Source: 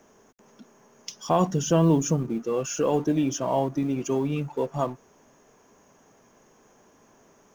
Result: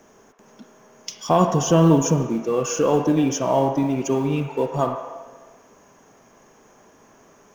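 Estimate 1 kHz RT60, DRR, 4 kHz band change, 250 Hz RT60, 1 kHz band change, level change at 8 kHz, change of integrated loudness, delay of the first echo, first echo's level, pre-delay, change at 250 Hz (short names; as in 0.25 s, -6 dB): 1.3 s, 3.5 dB, +5.0 dB, 1.7 s, +6.0 dB, n/a, +5.0 dB, none, none, 33 ms, +4.5 dB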